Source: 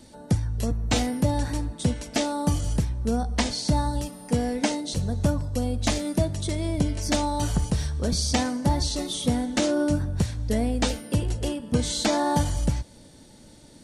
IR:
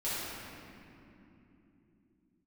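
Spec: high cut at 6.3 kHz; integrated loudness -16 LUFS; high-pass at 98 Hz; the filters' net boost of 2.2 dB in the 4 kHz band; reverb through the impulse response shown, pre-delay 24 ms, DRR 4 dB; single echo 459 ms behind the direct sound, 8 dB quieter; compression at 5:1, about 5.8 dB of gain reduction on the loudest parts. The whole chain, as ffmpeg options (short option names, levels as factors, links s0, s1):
-filter_complex "[0:a]highpass=98,lowpass=6300,equalizer=f=4000:t=o:g=3.5,acompressor=threshold=0.0562:ratio=5,aecho=1:1:459:0.398,asplit=2[s0][s1];[1:a]atrim=start_sample=2205,adelay=24[s2];[s1][s2]afir=irnorm=-1:irlink=0,volume=0.299[s3];[s0][s3]amix=inputs=2:normalize=0,volume=3.76"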